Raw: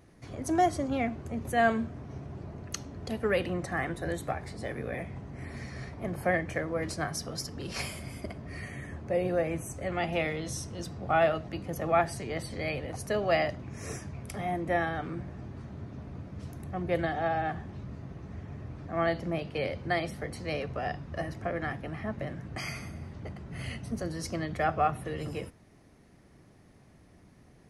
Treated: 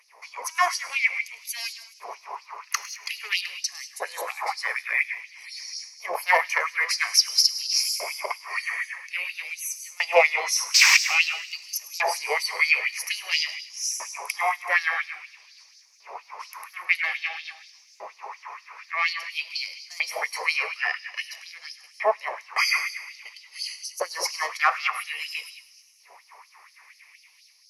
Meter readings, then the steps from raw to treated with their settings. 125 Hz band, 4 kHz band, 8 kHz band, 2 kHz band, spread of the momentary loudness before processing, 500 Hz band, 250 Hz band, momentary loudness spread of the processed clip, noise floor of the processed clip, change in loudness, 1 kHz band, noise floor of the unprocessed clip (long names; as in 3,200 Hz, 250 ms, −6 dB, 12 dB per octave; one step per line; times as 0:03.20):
below −40 dB, +17.5 dB, +16.0 dB, +12.5 dB, 15 LU, −2.0 dB, below −25 dB, 20 LU, −56 dBFS, +8.5 dB, +3.5 dB, −58 dBFS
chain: sound drawn into the spectrogram noise, 0:10.74–0:10.97, 460–8,400 Hz −28 dBFS
soft clipping −24 dBFS, distortion −12 dB
automatic gain control gain up to 4 dB
auto-filter high-pass saw up 0.5 Hz 570–7,400 Hz
EQ curve with evenly spaced ripples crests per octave 0.83, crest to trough 13 dB
reverb whose tail is shaped and stops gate 210 ms rising, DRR 11 dB
auto-filter high-pass sine 4.2 Hz 600–4,600 Hz
dynamic equaliser 400 Hz, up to +4 dB, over −47 dBFS, Q 1.1
delay with a high-pass on its return 105 ms, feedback 68%, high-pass 3,800 Hz, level −16.5 dB
level +4.5 dB